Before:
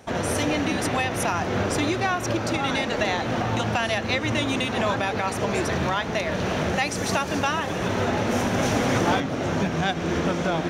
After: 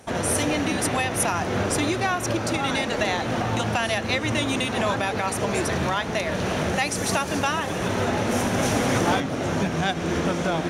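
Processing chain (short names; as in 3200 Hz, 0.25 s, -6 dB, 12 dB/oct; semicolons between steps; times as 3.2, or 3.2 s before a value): bell 10000 Hz +9 dB 0.73 oct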